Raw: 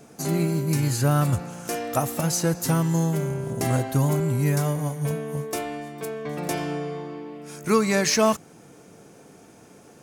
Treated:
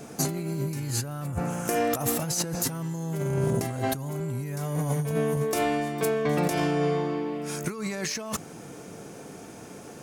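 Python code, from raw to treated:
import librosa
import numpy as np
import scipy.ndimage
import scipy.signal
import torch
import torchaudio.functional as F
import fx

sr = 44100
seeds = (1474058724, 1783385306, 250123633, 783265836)

y = fx.peak_eq(x, sr, hz=4200.0, db=fx.line((1.25, -12.5), (1.9, -6.0)), octaves=0.95, at=(1.25, 1.9), fade=0.02)
y = fx.over_compress(y, sr, threshold_db=-30.0, ratio=-1.0)
y = y * 10.0 ** (1.5 / 20.0)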